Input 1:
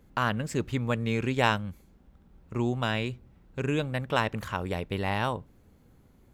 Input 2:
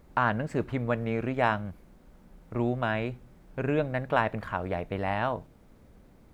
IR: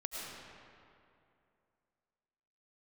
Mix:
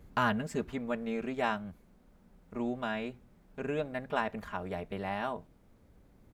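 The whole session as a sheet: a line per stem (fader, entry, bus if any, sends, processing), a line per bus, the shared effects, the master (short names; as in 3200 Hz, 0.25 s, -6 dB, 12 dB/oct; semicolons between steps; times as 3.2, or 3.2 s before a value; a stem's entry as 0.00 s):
0.0 dB, 0.00 s, no send, low shelf 170 Hz +4.5 dB; auto duck -14 dB, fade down 0.90 s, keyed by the second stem
-7.0 dB, 5 ms, no send, dry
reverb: off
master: dry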